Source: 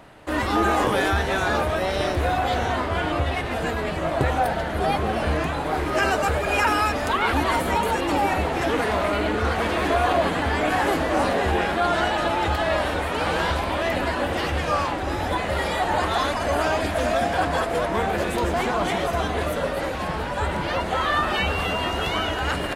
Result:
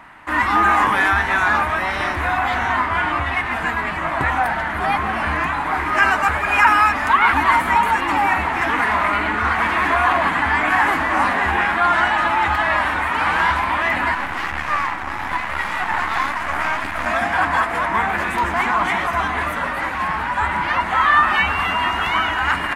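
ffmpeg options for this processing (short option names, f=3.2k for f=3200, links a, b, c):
-filter_complex "[0:a]asettb=1/sr,asplit=3[a][b][c];[a]atrim=end=14.144[d];[b]atrim=start=14.14:end=17.06,asetpts=PTS-STARTPTS,afade=t=in:d=0.004:c=qsin,afade=t=out:st=2.916:d=0.004:c=qsin,aeval=exprs='max(val(0),0)':c=same[e];[c]atrim=start=17.056[f];[d][e]acrossfade=d=0.004:c1=hsin:c2=qsin[g];[g][f]acrossfade=d=0.004:c1=qsin:c2=hsin,equalizer=f=125:t=o:w=1:g=-3,equalizer=f=250:t=o:w=1:g=4,equalizer=f=500:t=o:w=1:g=-11,equalizer=f=1k:t=o:w=1:g=12,equalizer=f=2k:t=o:w=1:g=11,equalizer=f=4k:t=o:w=1:g=-3,volume=-2dB"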